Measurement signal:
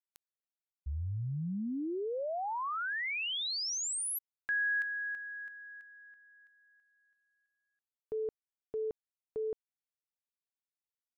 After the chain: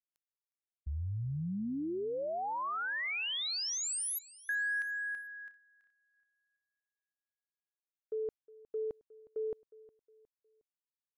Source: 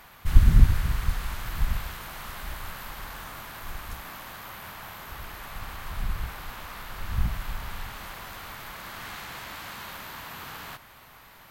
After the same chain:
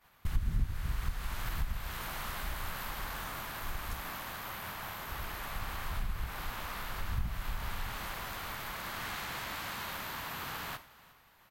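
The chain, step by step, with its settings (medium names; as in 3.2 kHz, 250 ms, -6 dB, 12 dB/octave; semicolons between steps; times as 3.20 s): expander -41 dBFS, range -23 dB; compression 3:1, threshold -32 dBFS; feedback delay 361 ms, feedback 39%, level -20.5 dB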